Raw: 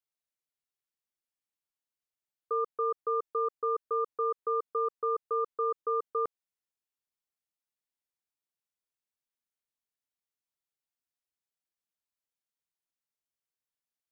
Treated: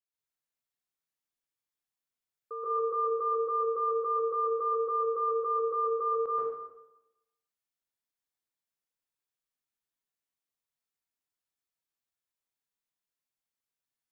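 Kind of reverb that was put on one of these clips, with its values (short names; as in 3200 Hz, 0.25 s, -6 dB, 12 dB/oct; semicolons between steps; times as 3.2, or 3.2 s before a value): plate-style reverb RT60 0.96 s, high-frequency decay 0.8×, pre-delay 0.115 s, DRR -9 dB; gain -9 dB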